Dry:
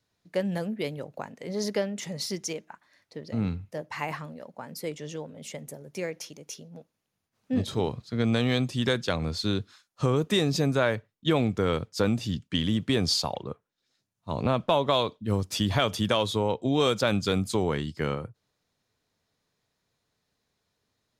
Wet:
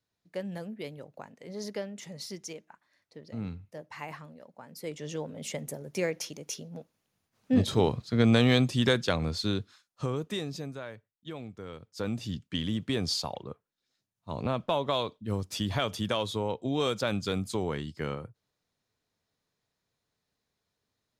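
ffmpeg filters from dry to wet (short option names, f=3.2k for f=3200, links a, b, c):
-af "volume=15dB,afade=t=in:st=4.73:d=0.6:silence=0.281838,afade=t=out:st=8.43:d=1.64:silence=0.316228,afade=t=out:st=10.07:d=0.75:silence=0.316228,afade=t=in:st=11.81:d=0.42:silence=0.251189"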